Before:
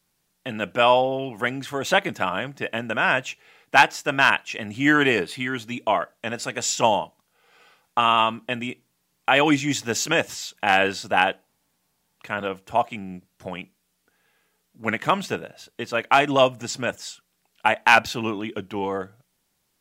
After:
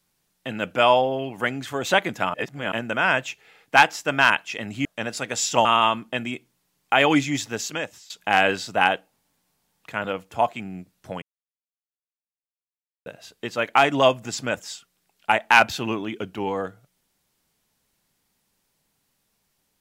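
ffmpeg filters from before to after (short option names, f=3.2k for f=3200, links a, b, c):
-filter_complex "[0:a]asplit=8[a][b][c][d][e][f][g][h];[a]atrim=end=2.342[i];[b]atrim=start=2.338:end=2.722,asetpts=PTS-STARTPTS,areverse[j];[c]atrim=start=2.718:end=4.852[k];[d]atrim=start=6.108:end=6.912[l];[e]atrim=start=8.008:end=10.46,asetpts=PTS-STARTPTS,afade=t=out:st=1.532:d=0.92:silence=0.105925[m];[f]atrim=start=10.46:end=13.58,asetpts=PTS-STARTPTS,afade=t=in:d=0.004:c=hsin:silence=0.105925,afade=t=out:st=3.116:d=0.004:c=hsin[n];[g]atrim=start=13.58:end=15.42,asetpts=PTS-STARTPTS,volume=0[o];[h]atrim=start=15.42,asetpts=PTS-STARTPTS,afade=t=in:d=0.004:c=hsin[p];[i][j]acrossfade=d=0.004:c1=hsin:c2=hsin[q];[q][k]acrossfade=d=0.004:c1=hsin:c2=hsin[r];[r][l]acrossfade=d=0.004:c1=hsin:c2=hsin[s];[m][n][o][p]concat=n=4:v=0:a=1[t];[s][t]acrossfade=d=0.004:c1=hsin:c2=hsin"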